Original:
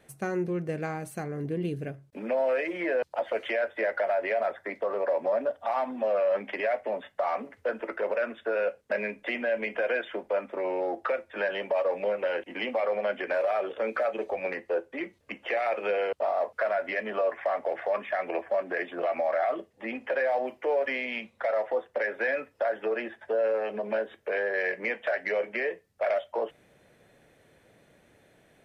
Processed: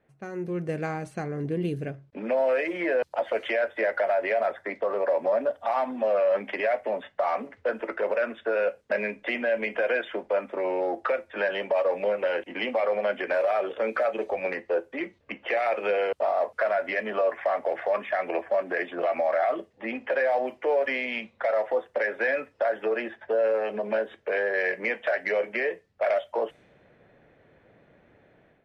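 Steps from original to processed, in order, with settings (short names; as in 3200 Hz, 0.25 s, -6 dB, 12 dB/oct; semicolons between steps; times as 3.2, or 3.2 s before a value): low-pass opened by the level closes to 2100 Hz, open at -27 dBFS; AGC gain up to 11 dB; gain -8.5 dB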